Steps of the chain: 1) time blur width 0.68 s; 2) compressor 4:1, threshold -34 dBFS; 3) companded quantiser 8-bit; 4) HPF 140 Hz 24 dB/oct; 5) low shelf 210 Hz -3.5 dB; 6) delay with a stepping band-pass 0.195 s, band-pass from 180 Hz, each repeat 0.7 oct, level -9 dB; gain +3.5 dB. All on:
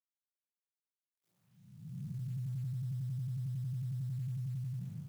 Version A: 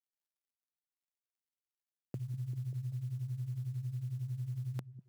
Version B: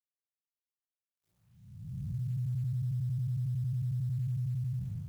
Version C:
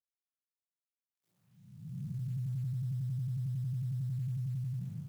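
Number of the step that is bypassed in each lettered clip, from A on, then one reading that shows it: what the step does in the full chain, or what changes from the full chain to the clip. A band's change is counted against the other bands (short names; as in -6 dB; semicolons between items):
1, crest factor change +8.0 dB; 4, momentary loudness spread change +3 LU; 5, loudness change +2.5 LU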